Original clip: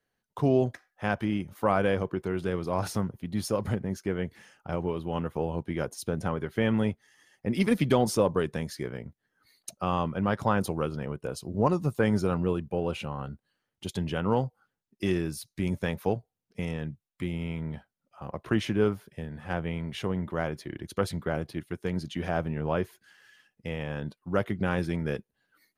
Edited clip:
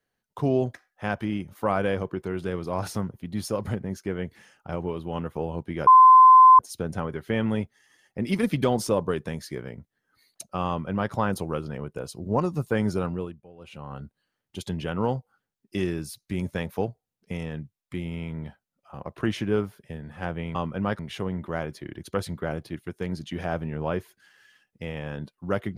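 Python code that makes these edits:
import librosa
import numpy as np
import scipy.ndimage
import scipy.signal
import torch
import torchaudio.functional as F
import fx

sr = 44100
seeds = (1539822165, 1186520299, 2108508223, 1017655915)

y = fx.edit(x, sr, fx.insert_tone(at_s=5.87, length_s=0.72, hz=1030.0, db=-8.5),
    fx.duplicate(start_s=9.96, length_s=0.44, to_s=19.83),
    fx.fade_down_up(start_s=12.29, length_s=1.02, db=-20.0, fade_s=0.45), tone=tone)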